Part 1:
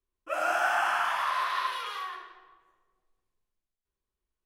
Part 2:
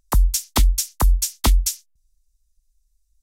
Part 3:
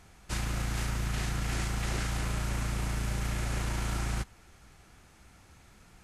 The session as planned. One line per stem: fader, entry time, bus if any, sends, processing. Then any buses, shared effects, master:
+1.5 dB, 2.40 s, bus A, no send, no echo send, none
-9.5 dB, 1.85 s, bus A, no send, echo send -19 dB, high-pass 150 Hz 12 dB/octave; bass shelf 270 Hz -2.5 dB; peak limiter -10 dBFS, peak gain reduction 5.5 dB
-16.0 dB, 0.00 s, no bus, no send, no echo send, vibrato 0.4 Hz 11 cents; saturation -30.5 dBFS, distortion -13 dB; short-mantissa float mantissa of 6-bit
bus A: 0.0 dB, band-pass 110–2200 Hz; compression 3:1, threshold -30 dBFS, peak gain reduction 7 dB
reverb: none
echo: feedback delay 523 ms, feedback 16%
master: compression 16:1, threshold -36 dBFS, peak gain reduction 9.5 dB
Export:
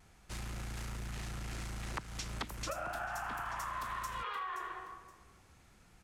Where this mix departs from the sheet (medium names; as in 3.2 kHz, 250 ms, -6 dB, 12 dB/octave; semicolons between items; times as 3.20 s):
stem 1 +1.5 dB -> +10.0 dB; stem 2 -9.5 dB -> +2.5 dB; stem 3 -16.0 dB -> -6.0 dB